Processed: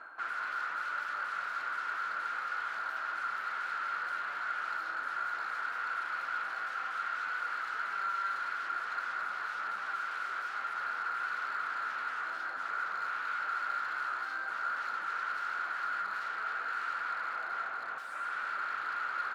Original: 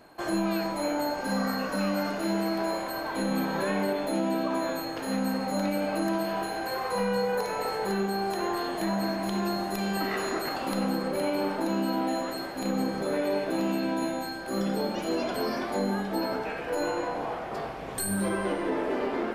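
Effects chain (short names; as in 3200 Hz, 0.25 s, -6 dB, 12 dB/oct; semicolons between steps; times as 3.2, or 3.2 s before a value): reverse; upward compressor, threshold -33 dBFS; reverse; sine folder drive 17 dB, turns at -17 dBFS; band-pass 1400 Hz, Q 13; in parallel at -9 dB: soft clip -36.5 dBFS, distortion -9 dB; on the sum: speakerphone echo 0.22 s, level -7 dB; gain -4.5 dB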